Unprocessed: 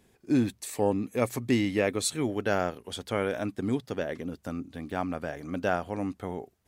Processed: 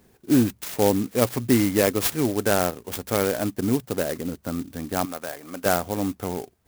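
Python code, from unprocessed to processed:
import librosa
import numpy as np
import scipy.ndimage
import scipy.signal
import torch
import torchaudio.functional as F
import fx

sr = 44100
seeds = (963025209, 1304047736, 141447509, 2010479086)

y = fx.highpass(x, sr, hz=760.0, slope=6, at=(5.05, 5.66))
y = fx.clock_jitter(y, sr, seeds[0], jitter_ms=0.08)
y = y * 10.0 ** (6.0 / 20.0)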